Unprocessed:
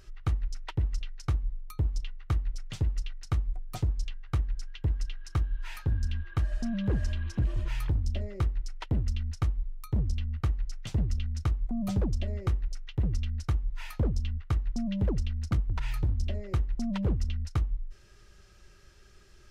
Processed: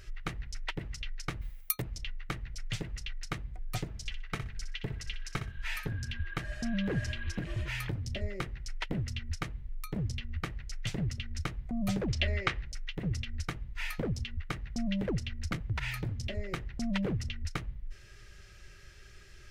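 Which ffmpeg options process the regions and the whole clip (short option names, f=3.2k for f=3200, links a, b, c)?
-filter_complex "[0:a]asettb=1/sr,asplit=3[a][b][c];[a]atrim=end=1.414[d];[b]atrim=start=1.41:end=1.82,asetpts=PTS-STARTPTS,afade=t=in:d=0.004:c=qsin,afade=t=out:st=0.406:d=0.004:c=qsin,agate=range=-33dB:threshold=-37dB:ratio=3:release=100:detection=peak,aemphasis=mode=production:type=riaa,acontrast=50[e];[c]atrim=start=1.816[f];[d][e]acrossfade=d=0.004:c1=hsin:c2=qsin[g];[g][f]acrossfade=d=0.004:c1=qsin:c2=hsin,asettb=1/sr,asplit=3[h][i][j];[h]atrim=end=3.884[k];[i]atrim=start=3.88:end=5.88,asetpts=PTS-STARTPTS,afade=t=in:d=0.004:c=qsin,afade=t=out:st=1.996:d=0.004:c=qsin,aecho=1:1:4.6:0.34,atrim=end_sample=88200,aecho=1:1:62|124|186:0.299|0.0567|0.0108,atrim=end_sample=88200[l];[j]atrim=start=5.876[m];[k][l]acrossfade=d=0.004:c1=hsin:c2=qsin[n];[n][m]acrossfade=d=0.004:c1=qsin:c2=hsin,asettb=1/sr,asplit=3[o][p][q];[o]atrim=end=12.084[r];[p]atrim=start=12.08:end=12.62,asetpts=PTS-STARTPTS,afade=t=in:d=0.004:c=qsin,afade=t=out:st=0.536:d=0.004:c=qsin,lowpass=3.9k,tiltshelf=f=780:g=-7.5,acontrast=28[s];[q]atrim=start=12.616[t];[r][s]acrossfade=d=0.004:c1=hsin:c2=qsin[u];[u][t]acrossfade=d=0.004:c1=qsin:c2=hsin,equalizer=f=250:t=o:w=1:g=-6,equalizer=f=1k:t=o:w=1:g=-6,equalizer=f=2k:t=o:w=1:g=7,afftfilt=real='re*lt(hypot(re,im),0.316)':imag='im*lt(hypot(re,im),0.316)':win_size=1024:overlap=0.75,equalizer=f=120:t=o:w=0.77:g=3.5,volume=3dB"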